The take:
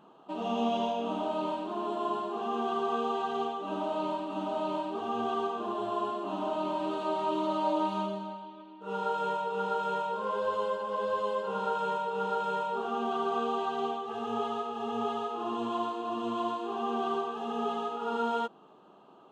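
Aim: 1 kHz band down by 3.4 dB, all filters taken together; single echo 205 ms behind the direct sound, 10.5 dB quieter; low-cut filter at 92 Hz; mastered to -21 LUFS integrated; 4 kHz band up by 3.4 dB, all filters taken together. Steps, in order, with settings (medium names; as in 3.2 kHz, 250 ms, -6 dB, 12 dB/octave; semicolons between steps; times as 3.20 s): high-pass 92 Hz; peaking EQ 1 kHz -4.5 dB; peaking EQ 4 kHz +5 dB; delay 205 ms -10.5 dB; trim +12.5 dB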